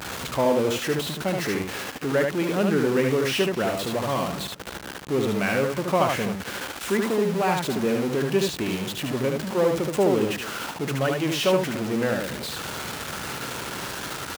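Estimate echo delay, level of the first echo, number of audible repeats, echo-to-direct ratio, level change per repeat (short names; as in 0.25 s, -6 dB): 75 ms, -3.5 dB, 2, -3.5 dB, no steady repeat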